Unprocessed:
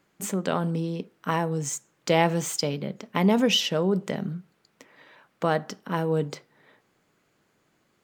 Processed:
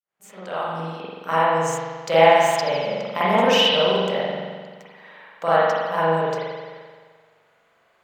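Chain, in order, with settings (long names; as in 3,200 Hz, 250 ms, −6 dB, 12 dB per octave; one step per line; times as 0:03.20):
fade in at the beginning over 1.08 s
low shelf with overshoot 430 Hz −10.5 dB, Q 1.5
spring reverb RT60 1.6 s, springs 43 ms, chirp 45 ms, DRR −10 dB
level −2 dB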